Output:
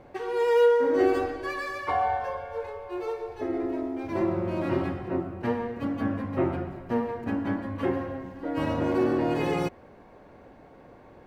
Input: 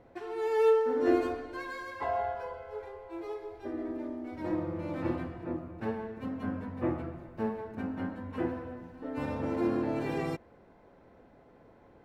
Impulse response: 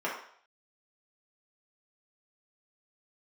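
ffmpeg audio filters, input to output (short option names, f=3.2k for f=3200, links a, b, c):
-filter_complex "[0:a]asplit=2[a][b];[b]alimiter=level_in=1dB:limit=-24dB:level=0:latency=1:release=77,volume=-1dB,volume=2dB[c];[a][c]amix=inputs=2:normalize=0,asetrate=47187,aresample=44100"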